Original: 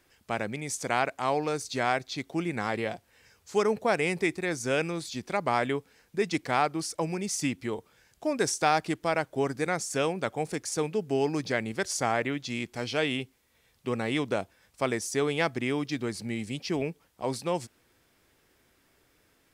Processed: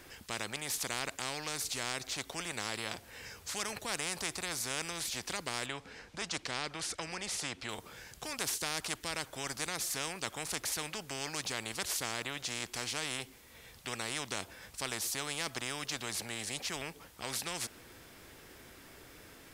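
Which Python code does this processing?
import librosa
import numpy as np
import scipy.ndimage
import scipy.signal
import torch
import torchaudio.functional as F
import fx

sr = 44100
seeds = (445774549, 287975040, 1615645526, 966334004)

y = fx.air_absorb(x, sr, metres=74.0, at=(5.66, 7.69))
y = fx.spectral_comp(y, sr, ratio=4.0)
y = y * 10.0 ** (-7.0 / 20.0)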